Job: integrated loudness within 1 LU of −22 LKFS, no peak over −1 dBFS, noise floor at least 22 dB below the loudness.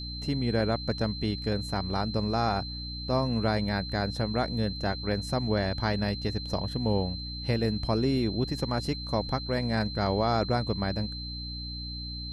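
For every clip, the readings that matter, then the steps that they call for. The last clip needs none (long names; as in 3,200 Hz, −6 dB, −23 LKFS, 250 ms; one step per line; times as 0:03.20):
mains hum 60 Hz; hum harmonics up to 300 Hz; level of the hum −36 dBFS; interfering tone 4,100 Hz; level of the tone −38 dBFS; integrated loudness −29.5 LKFS; sample peak −14.0 dBFS; target loudness −22.0 LKFS
→ mains-hum notches 60/120/180/240/300 Hz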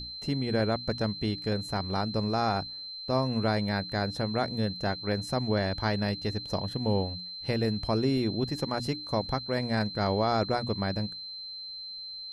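mains hum none found; interfering tone 4,100 Hz; level of the tone −38 dBFS
→ notch filter 4,100 Hz, Q 30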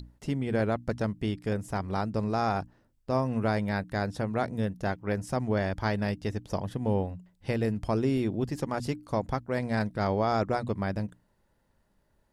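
interfering tone none found; integrated loudness −30.5 LKFS; sample peak −14.5 dBFS; target loudness −22.0 LKFS
→ level +8.5 dB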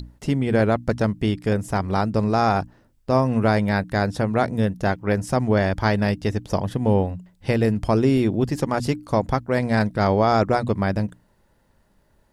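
integrated loudness −22.0 LKFS; sample peak −6.0 dBFS; background noise floor −62 dBFS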